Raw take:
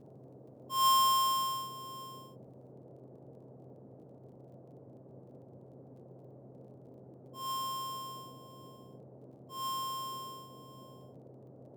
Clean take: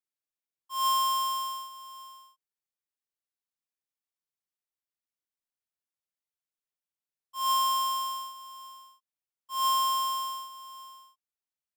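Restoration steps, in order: de-click; de-hum 130 Hz, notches 5; noise print and reduce 30 dB; trim 0 dB, from 2.72 s +11 dB

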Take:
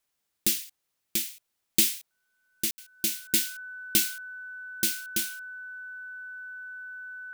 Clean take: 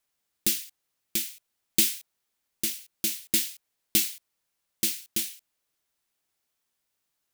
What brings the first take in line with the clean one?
band-stop 1.5 kHz, Q 30; room tone fill 2.71–2.78 s

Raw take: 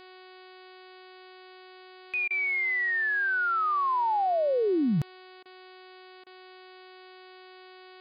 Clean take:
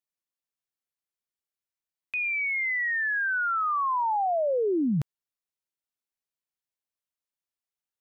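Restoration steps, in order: de-hum 370.8 Hz, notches 13; interpolate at 2.28/5.43/6.24 s, 24 ms

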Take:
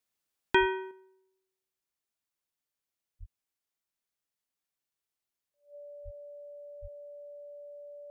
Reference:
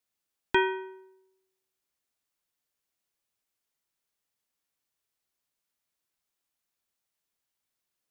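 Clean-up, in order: band-stop 580 Hz, Q 30; de-plosive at 0.59/3.19/6.04/6.81 s; trim 0 dB, from 0.91 s +5.5 dB

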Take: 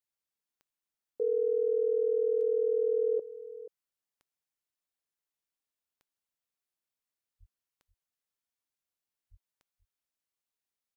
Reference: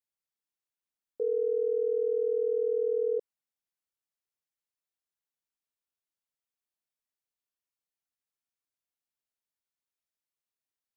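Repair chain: de-click; 7.39–7.51 s: high-pass 140 Hz 24 dB/octave; 9.30–9.42 s: high-pass 140 Hz 24 dB/octave; inverse comb 482 ms -15.5 dB

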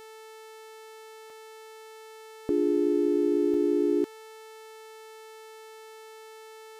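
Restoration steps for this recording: de-hum 439.8 Hz, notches 35; interpolate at 1.30/3.54 s, 2.1 ms

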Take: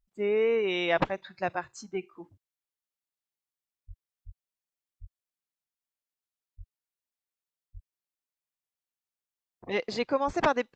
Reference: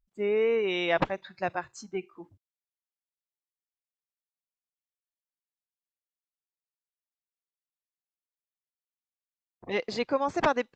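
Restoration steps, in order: de-plosive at 3.87/4.25/5.00/6.57/7.73/10.26 s

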